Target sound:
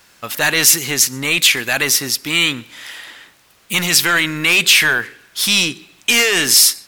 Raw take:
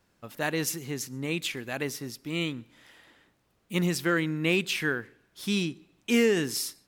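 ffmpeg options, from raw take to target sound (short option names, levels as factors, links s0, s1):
-af "apsyclip=28.2,tiltshelf=f=810:g=-8.5,volume=0.237"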